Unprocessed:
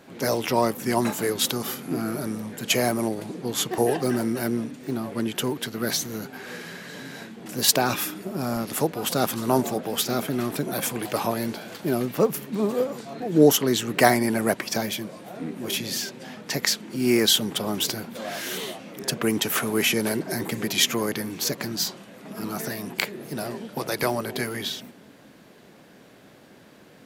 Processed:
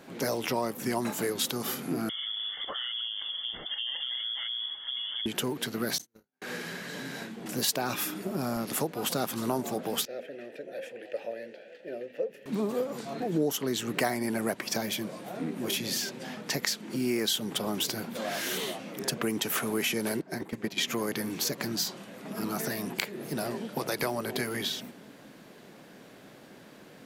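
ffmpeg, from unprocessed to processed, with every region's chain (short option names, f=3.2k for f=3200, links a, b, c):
-filter_complex "[0:a]asettb=1/sr,asplit=3[a][b][c];[a]atrim=end=2.094[d];[b]atrim=start=2.09:end=5.26,asetpts=PTS-STARTPTS,afade=t=in:d=0.004:c=qsin,afade=t=out:st=3.166:d=0.004:c=qsin,acompressor=threshold=-30dB:ratio=6:attack=3.2:release=140:knee=1:detection=peak,asuperstop=centerf=1100:order=20:qfactor=2.1,lowpass=f=3.1k:t=q:w=0.5098,lowpass=f=3.1k:t=q:w=0.6013,lowpass=f=3.1k:t=q:w=0.9,lowpass=f=3.1k:t=q:w=2.563,afreqshift=-3600[e];[c]atrim=start=5.256[f];[d][e]acrossfade=d=0.004:c1=hsin:c2=qsin[g];[g][f]acrossfade=d=0.004:c1=qsin:c2=hsin,asettb=1/sr,asplit=3[h][i][j];[h]atrim=end=5.984[k];[i]atrim=start=5.98:end=6.42,asetpts=PTS-STARTPTS,afade=t=in:d=0.004:c=qsin,afade=t=out:st=0.436:d=0.004:c=qsin,agate=range=-50dB:threshold=-28dB:ratio=16:release=100:detection=peak,acompressor=threshold=-37dB:ratio=5:attack=3.2:release=140:knee=1:detection=peak,asplit=2[l][m];[m]adelay=31,volume=-11dB[n];[l][n]amix=inputs=2:normalize=0,atrim=end_sample=19404[o];[j]atrim=start=6.416[p];[k][o]acrossfade=d=0.004:c1=hsin:c2=qsin[q];[q][p]acrossfade=d=0.004:c1=qsin:c2=hsin,asettb=1/sr,asplit=3[r][s][t];[r]atrim=end=10.054[u];[s]atrim=start=10.05:end=12.46,asetpts=PTS-STARTPTS,afade=t=in:d=0.004:c=qsin,afade=t=out:st=2.406:d=0.004:c=qsin,asplit=3[v][w][x];[v]bandpass=f=530:t=q:w=8,volume=0dB[y];[w]bandpass=f=1.84k:t=q:w=8,volume=-6dB[z];[x]bandpass=f=2.48k:t=q:w=8,volume=-9dB[aa];[y][z][aa]amix=inputs=3:normalize=0,bandreject=f=50:t=h:w=6,bandreject=f=100:t=h:w=6,bandreject=f=150:t=h:w=6,bandreject=f=200:t=h:w=6,bandreject=f=250:t=h:w=6,bandreject=f=300:t=h:w=6,bandreject=f=350:t=h:w=6,bandreject=f=400:t=h:w=6[ab];[t]atrim=start=12.456[ac];[u][ab]acrossfade=d=0.004:c1=hsin:c2=qsin[ad];[ad][ac]acrossfade=d=0.004:c1=qsin:c2=hsin,asettb=1/sr,asplit=3[ae][af][ag];[ae]atrim=end=20.214[ah];[af]atrim=start=20.21:end=20.88,asetpts=PTS-STARTPTS,afade=t=in:d=0.004:c=qsin,afade=t=out:st=0.666:d=0.004:c=qsin,highpass=f=78:p=1,agate=range=-14dB:threshold=-28dB:ratio=16:release=100:detection=peak,highshelf=f=6.4k:g=-12[ai];[ag]atrim=start=20.876[aj];[ah][ai]acrossfade=d=0.004:c1=hsin:c2=qsin[ak];[ak][aj]acrossfade=d=0.004:c1=qsin:c2=hsin,acompressor=threshold=-28dB:ratio=3,equalizer=f=86:w=4.2:g=-13"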